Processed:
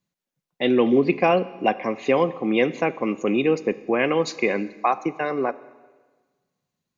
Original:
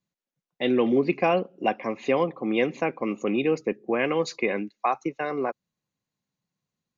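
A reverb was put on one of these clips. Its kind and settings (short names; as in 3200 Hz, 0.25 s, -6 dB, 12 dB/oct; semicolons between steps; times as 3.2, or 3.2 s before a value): Schroeder reverb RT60 1.4 s, combs from 29 ms, DRR 16.5 dB; gain +3.5 dB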